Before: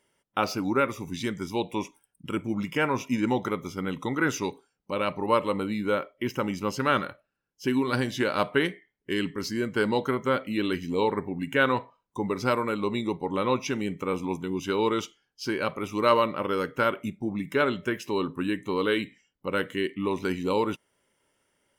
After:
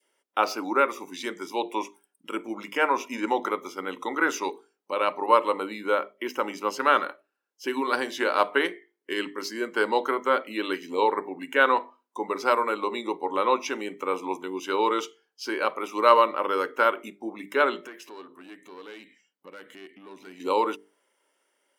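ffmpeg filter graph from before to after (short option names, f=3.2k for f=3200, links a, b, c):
-filter_complex "[0:a]asettb=1/sr,asplit=3[a][b][c];[a]atrim=end=17.874[d];[b]atrim=start=17.87:end=20.4,asetpts=PTS-STARTPTS,afade=t=in:d=0.004:c=qsin,afade=t=out:st=2.526:d=0.004:c=qsin,acompressor=threshold=-41dB:ratio=2.5:attack=3.2:release=140:knee=1:detection=peak,aeval=exprs='(tanh(50.1*val(0)+0.25)-tanh(0.25))/50.1':c=same,asubboost=boost=7:cutoff=180[e];[c]atrim=start=20.396[f];[d][e]acrossfade=d=0.004:c1=hsin:c2=qsin[g];[g][f]acrossfade=d=0.004:c1=qsin:c2=hsin,adynamicequalizer=threshold=0.0126:dfrequency=1000:dqfactor=1:tfrequency=1000:tqfactor=1:attack=5:release=100:ratio=0.375:range=3:mode=boostabove:tftype=bell,highpass=f=300:w=0.5412,highpass=f=300:w=1.3066,bandreject=f=50:t=h:w=6,bandreject=f=100:t=h:w=6,bandreject=f=150:t=h:w=6,bandreject=f=200:t=h:w=6,bandreject=f=250:t=h:w=6,bandreject=f=300:t=h:w=6,bandreject=f=350:t=h:w=6,bandreject=f=400:t=h:w=6,bandreject=f=450:t=h:w=6"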